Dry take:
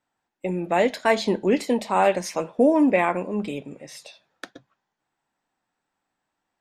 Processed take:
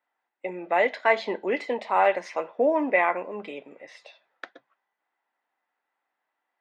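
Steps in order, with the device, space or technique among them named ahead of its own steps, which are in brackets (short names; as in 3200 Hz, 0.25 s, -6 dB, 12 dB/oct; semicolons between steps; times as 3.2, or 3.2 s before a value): tin-can telephone (BPF 510–2700 Hz; small resonant body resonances 2000 Hz, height 11 dB)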